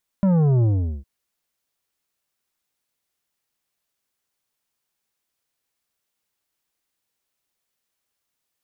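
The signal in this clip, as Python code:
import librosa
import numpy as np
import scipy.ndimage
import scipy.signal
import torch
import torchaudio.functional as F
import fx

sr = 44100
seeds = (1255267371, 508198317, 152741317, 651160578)

y = fx.sub_drop(sr, level_db=-15.5, start_hz=200.0, length_s=0.81, drive_db=9.5, fade_s=0.41, end_hz=65.0)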